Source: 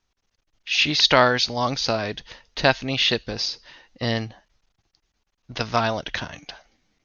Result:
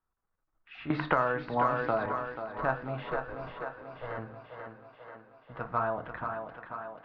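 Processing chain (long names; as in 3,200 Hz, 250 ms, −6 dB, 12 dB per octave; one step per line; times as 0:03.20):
0:03.11–0:04.18: lower of the sound and its delayed copy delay 1.9 ms
in parallel at −2 dB: brickwall limiter −13 dBFS, peak gain reduction 11 dB
on the sum: transistor ladder low-pass 1,500 Hz, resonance 50%
harmonic generator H 6 −38 dB, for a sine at −6 dBFS
on a send: feedback echo with a high-pass in the loop 487 ms, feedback 64%, high-pass 160 Hz, level −6 dB
on the sum: rectangular room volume 170 cubic metres, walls furnished, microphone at 0.63 metres
0:00.90–0:02.06: multiband upward and downward compressor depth 100%
level −7 dB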